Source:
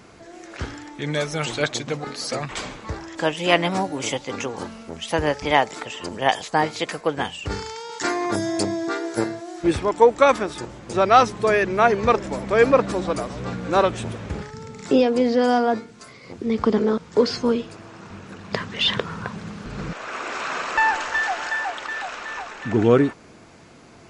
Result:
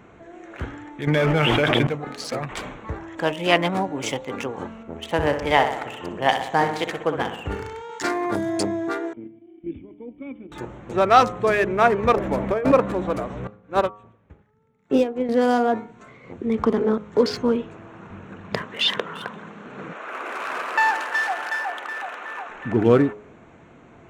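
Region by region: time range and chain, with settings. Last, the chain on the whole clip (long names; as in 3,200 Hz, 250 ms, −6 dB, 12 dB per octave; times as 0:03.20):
0:01.07–0:01.87: Butterworth low-pass 3,400 Hz 96 dB per octave + envelope flattener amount 100%
0:04.83–0:07.82: repeating echo 63 ms, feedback 59%, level −8 dB + one half of a high-frequency compander decoder only
0:09.13–0:10.52: output level in coarse steps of 9 dB + formant resonators in series i
0:12.13–0:12.72: running median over 5 samples + dynamic equaliser 590 Hz, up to +5 dB, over −28 dBFS, Q 1.4 + compressor whose output falls as the input rises −20 dBFS
0:13.47–0:15.29: low-pass filter 7,700 Hz + expander for the loud parts 2.5 to 1, over −32 dBFS
0:18.62–0:22.49: high-pass filter 270 Hz + echo through a band-pass that steps 172 ms, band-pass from 1,300 Hz, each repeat 1.4 octaves, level −11.5 dB
whole clip: adaptive Wiener filter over 9 samples; hum removal 104.4 Hz, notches 13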